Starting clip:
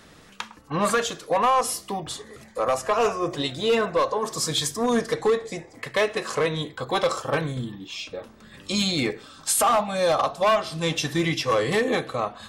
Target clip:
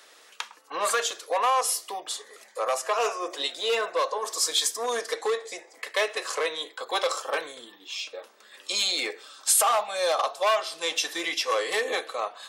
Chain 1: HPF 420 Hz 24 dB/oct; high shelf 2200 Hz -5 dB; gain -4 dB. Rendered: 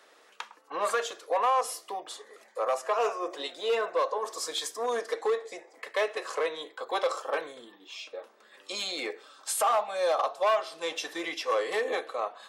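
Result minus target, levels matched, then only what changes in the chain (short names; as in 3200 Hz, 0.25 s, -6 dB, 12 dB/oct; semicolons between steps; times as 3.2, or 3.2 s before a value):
4000 Hz band -5.0 dB
change: high shelf 2200 Hz +6.5 dB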